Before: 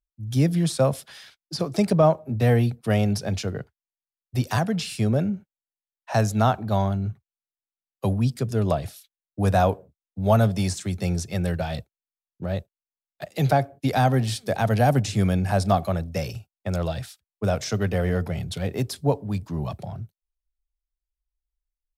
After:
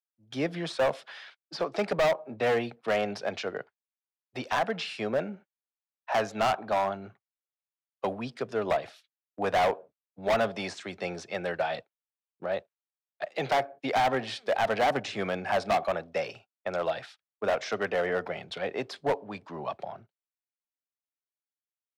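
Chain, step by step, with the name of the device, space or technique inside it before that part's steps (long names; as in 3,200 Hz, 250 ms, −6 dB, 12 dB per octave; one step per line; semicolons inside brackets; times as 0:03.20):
walkie-talkie (band-pass filter 530–2,700 Hz; hard clipping −24.5 dBFS, distortion −7 dB; noise gate −55 dBFS, range −8 dB)
level +3.5 dB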